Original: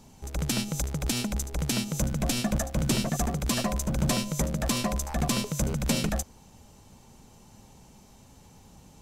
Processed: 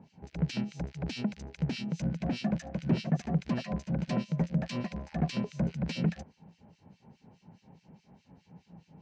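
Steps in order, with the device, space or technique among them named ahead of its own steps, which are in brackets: guitar amplifier with harmonic tremolo (harmonic tremolo 4.8 Hz, depth 100%, crossover 1.9 kHz; saturation -20 dBFS, distortion -21 dB; cabinet simulation 100–4200 Hz, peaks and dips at 170 Hz +10 dB, 1.2 kHz -9 dB, 3.5 kHz -8 dB)

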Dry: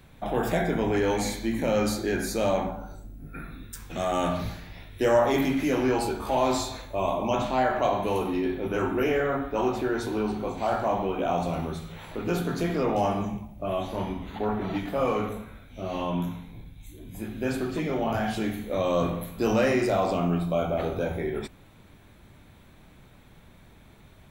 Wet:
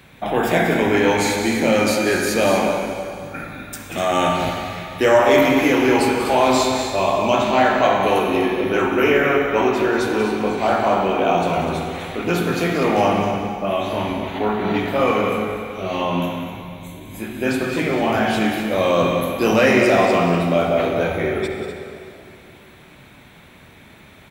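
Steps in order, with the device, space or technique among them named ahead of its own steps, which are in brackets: stadium PA (high-pass 140 Hz 6 dB/octave; peaking EQ 2.3 kHz +5.5 dB 1.2 oct; loudspeakers at several distances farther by 64 m -11 dB, 85 m -10 dB; reverberation RT60 2.7 s, pre-delay 47 ms, DRR 5.5 dB); trim +7 dB

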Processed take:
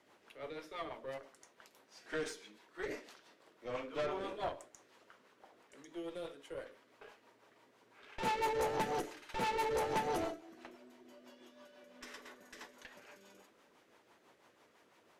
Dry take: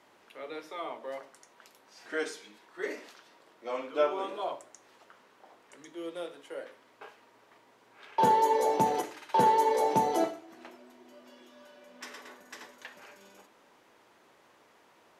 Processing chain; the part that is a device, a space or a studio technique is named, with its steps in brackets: overdriven rotary cabinet (valve stage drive 30 dB, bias 0.65; rotary cabinet horn 6 Hz); trim +1 dB

